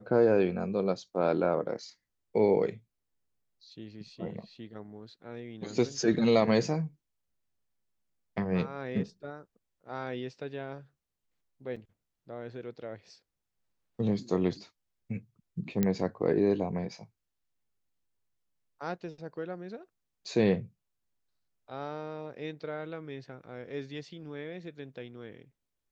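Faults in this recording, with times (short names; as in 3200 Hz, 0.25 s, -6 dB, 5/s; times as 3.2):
11.76–11.77 gap 5.4 ms
15.83 pop -14 dBFS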